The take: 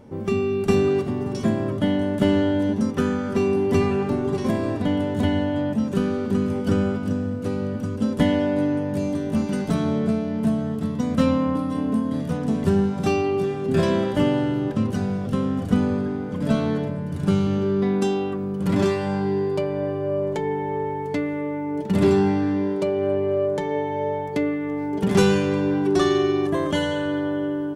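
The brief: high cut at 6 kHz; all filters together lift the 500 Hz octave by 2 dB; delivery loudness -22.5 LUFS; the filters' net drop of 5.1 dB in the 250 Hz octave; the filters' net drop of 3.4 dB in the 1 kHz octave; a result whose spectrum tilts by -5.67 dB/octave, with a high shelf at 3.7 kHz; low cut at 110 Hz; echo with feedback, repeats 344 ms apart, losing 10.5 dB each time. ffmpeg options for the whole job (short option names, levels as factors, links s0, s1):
-af "highpass=110,lowpass=6000,equalizer=f=250:t=o:g=-8.5,equalizer=f=500:t=o:g=7.5,equalizer=f=1000:t=o:g=-7,highshelf=f=3700:g=5,aecho=1:1:344|688|1032:0.299|0.0896|0.0269,volume=1.12"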